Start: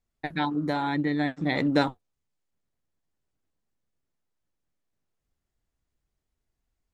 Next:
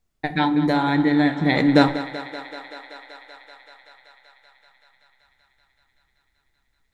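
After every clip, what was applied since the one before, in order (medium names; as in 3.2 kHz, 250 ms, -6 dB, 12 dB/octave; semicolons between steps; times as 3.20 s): thinning echo 191 ms, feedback 84%, high-pass 280 Hz, level -13 dB; on a send at -11 dB: reverberation RT60 0.70 s, pre-delay 6 ms; on the sum: trim +6.5 dB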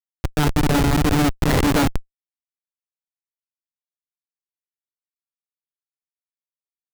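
tone controls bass -2 dB, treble +12 dB; Schmitt trigger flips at -16 dBFS; trim +8.5 dB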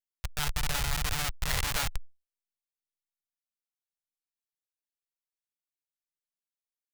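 amplifier tone stack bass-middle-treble 10-0-10; trim -3 dB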